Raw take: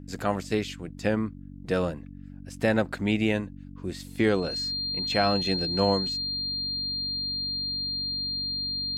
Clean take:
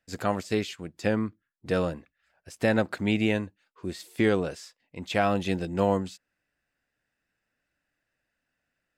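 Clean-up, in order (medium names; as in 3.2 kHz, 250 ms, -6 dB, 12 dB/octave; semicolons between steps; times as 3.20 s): de-hum 47.4 Hz, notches 6; band-stop 4.2 kHz, Q 30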